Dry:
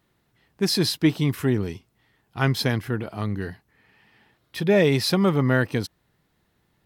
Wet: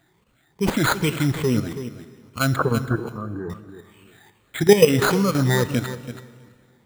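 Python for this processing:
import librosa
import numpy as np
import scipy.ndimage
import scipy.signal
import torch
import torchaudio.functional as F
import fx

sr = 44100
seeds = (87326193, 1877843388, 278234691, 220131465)

y = fx.spec_ripple(x, sr, per_octave=0.82, drift_hz=2.4, depth_db=20)
y = np.repeat(y[::8], 8)[:len(y)]
y = fx.cheby_ripple(y, sr, hz=1600.0, ripple_db=3, at=(2.56, 3.5))
y = fx.echo_feedback(y, sr, ms=328, feedback_pct=19, wet_db=-14.0)
y = fx.level_steps(y, sr, step_db=11)
y = fx.rev_plate(y, sr, seeds[0], rt60_s=2.1, hf_ratio=0.9, predelay_ms=0, drr_db=14.0)
y = F.gain(torch.from_numpy(y), 3.0).numpy()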